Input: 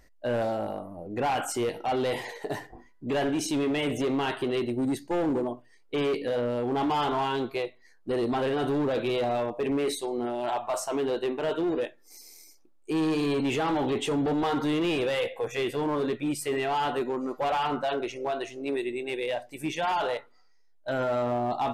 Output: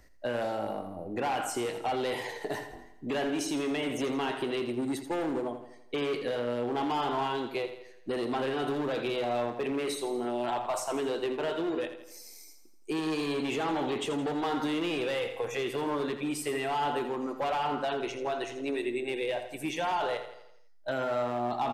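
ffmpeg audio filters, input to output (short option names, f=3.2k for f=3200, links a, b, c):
-filter_complex "[0:a]acrossover=split=190|1000[a][b][c];[a]acompressor=threshold=-49dB:ratio=4[d];[b]acompressor=threshold=-31dB:ratio=4[e];[c]acompressor=threshold=-35dB:ratio=4[f];[d][e][f]amix=inputs=3:normalize=0,aecho=1:1:83|166|249|332|415|498:0.299|0.152|0.0776|0.0396|0.0202|0.0103"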